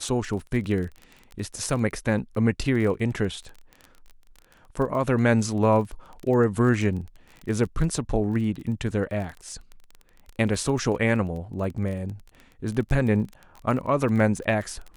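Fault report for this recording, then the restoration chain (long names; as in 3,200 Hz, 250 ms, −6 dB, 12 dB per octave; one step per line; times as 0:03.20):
surface crackle 25 per second −32 dBFS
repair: click removal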